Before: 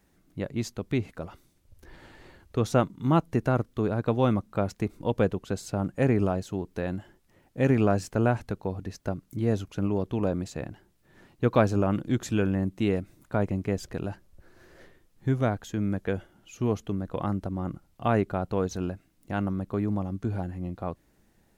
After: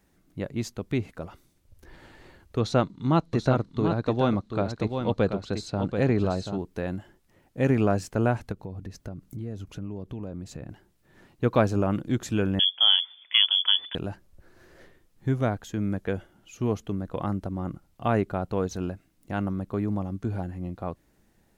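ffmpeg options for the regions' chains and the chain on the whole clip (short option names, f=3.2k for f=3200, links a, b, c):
-filter_complex "[0:a]asettb=1/sr,asplit=3[a][b][c];[a]atrim=end=2.604[d];[b]atrim=start=2.6:end=6.58,asetpts=PTS-STARTPTS,afade=t=in:d=0.004:c=qsin,afade=t=out:st=3.976:d=0.004:c=qsin,lowpass=6.7k,equalizer=f=4.1k:w=4.7:g=11.5,aecho=1:1:734:0.447,atrim=end_sample=175518[e];[c]atrim=start=6.576[f];[d][e]acrossfade=d=0.004:c1=hsin:c2=qsin[g];[g][f]acrossfade=d=0.004:c1=qsin:c2=hsin,asettb=1/sr,asplit=3[h][i][j];[h]atrim=end=8.524[k];[i]atrim=start=8.52:end=10.69,asetpts=PTS-STARTPTS,afade=t=in:d=0.004:c=qsin,afade=t=out:st=2.166:d=0.004:c=qsin,lowshelf=f=320:g=7.5,acompressor=threshold=-36dB:ratio=3:attack=3.2:release=140:knee=1:detection=peak[l];[j]atrim=start=10.686[m];[k][l]acrossfade=d=0.004:c1=hsin:c2=qsin[n];[n][m]acrossfade=d=0.004:c1=qsin:c2=hsin,asettb=1/sr,asplit=3[o][p][q];[o]atrim=end=12.594[r];[p]atrim=start=12.59:end=13.95,asetpts=PTS-STARTPTS,afade=t=in:d=0.004:c=qsin,afade=t=out:st=1.356:d=0.004:c=qsin,acontrast=31,lowpass=f=3k:t=q:w=0.5098,lowpass=f=3k:t=q:w=0.6013,lowpass=f=3k:t=q:w=0.9,lowpass=f=3k:t=q:w=2.563,afreqshift=-3500,lowshelf=f=130:g=-12[s];[q]atrim=start=13.946[t];[r][s]acrossfade=d=0.004:c1=hsin:c2=qsin[u];[u][t]acrossfade=d=0.004:c1=qsin:c2=hsin"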